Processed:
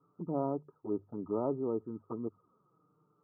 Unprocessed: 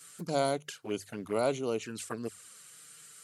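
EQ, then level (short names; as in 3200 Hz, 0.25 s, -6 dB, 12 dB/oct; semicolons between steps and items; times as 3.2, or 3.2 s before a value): rippled Chebyshev low-pass 1300 Hz, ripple 9 dB; low shelf 260 Hz +7.5 dB; 0.0 dB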